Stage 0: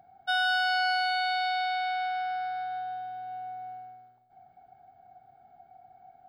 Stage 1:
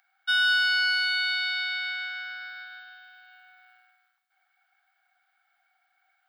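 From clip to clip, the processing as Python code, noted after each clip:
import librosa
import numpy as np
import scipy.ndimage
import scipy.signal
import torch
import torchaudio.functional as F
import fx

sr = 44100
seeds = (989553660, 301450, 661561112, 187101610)

y = scipy.signal.sosfilt(scipy.signal.butter(6, 1300.0, 'highpass', fs=sr, output='sos'), x)
y = y * 10.0 ** (6.0 / 20.0)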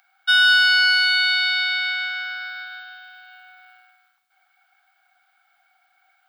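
y = fx.peak_eq(x, sr, hz=1800.0, db=-7.0, octaves=0.23)
y = y * 10.0 ** (8.5 / 20.0)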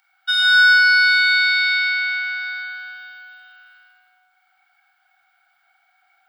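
y = fx.room_shoebox(x, sr, seeds[0], volume_m3=2300.0, walls='mixed', distance_m=4.5)
y = y * 10.0 ** (-6.0 / 20.0)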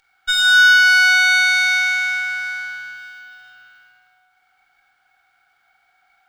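y = fx.running_max(x, sr, window=3)
y = y * 10.0 ** (1.5 / 20.0)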